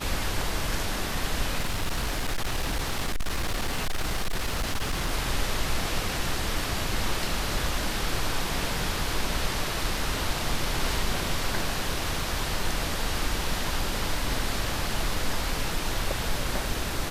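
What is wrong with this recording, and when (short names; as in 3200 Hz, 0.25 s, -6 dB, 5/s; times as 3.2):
1.58–5.12 clipped -23 dBFS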